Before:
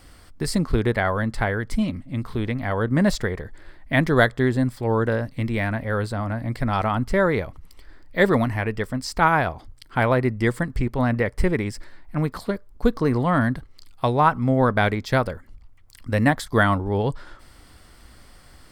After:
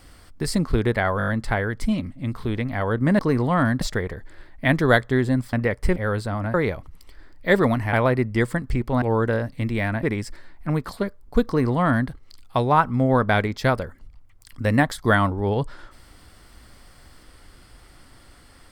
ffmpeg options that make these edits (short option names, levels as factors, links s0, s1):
-filter_complex "[0:a]asplit=14[s0][s1][s2][s3][s4][s5][s6][s7][s8][s9][s10][s11][s12][s13];[s0]atrim=end=1.202[s14];[s1]atrim=start=1.178:end=1.202[s15];[s2]atrim=start=1.178:end=1.202[s16];[s3]atrim=start=1.178:end=1.202[s17];[s4]atrim=start=1.178:end=1.202[s18];[s5]atrim=start=1.178:end=3.092[s19];[s6]atrim=start=12.948:end=13.572[s20];[s7]atrim=start=3.088:end=4.812[s21];[s8]atrim=start=11.078:end=11.512[s22];[s9]atrim=start=5.818:end=6.402[s23];[s10]atrim=start=7.238:end=8.632[s24];[s11]atrim=start=9.988:end=11.082[s25];[s12]atrim=start=4.808:end=5.822[s26];[s13]atrim=start=11.508[s27];[s14][s15]acrossfade=d=0.004:c1=hsin:c2=hsin[s28];[s28][s16]acrossfade=d=0.004:c1=hsin:c2=hsin[s29];[s29][s17]acrossfade=d=0.004:c1=hsin:c2=hsin[s30];[s30][s18]acrossfade=d=0.004:c1=hsin:c2=hsin[s31];[s31][s19]acrossfade=d=0.004:c1=hsin:c2=hsin[s32];[s32][s20]acrossfade=d=0.004:c1=hsin:c2=hsin[s33];[s33][s21]acrossfade=d=0.004:c1=hsin:c2=hsin[s34];[s34][s22]acrossfade=d=0.004:c1=hsin:c2=hsin[s35];[s35][s23]acrossfade=d=0.004:c1=hsin:c2=hsin[s36];[s36][s24]acrossfade=d=0.004:c1=hsin:c2=hsin[s37];[s37][s25]acrossfade=d=0.004:c1=hsin:c2=hsin[s38];[s38][s26]acrossfade=d=0.004:c1=hsin:c2=hsin[s39];[s39][s27]acrossfade=d=0.004:c1=hsin:c2=hsin"